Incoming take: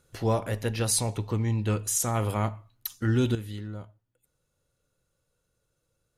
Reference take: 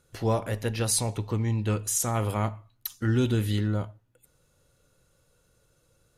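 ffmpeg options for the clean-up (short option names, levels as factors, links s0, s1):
-af "asetnsamples=n=441:p=0,asendcmd='3.35 volume volume 10.5dB',volume=1"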